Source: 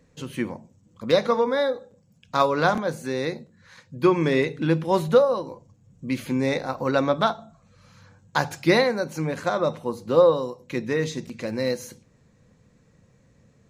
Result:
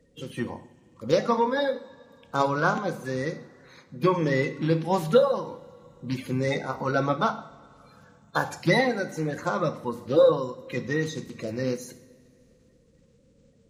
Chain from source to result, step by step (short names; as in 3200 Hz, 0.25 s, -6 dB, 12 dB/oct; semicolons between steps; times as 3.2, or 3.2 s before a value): bin magnitudes rounded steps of 30 dB; two-slope reverb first 0.58 s, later 3.1 s, from -18 dB, DRR 9.5 dB; gain -2.5 dB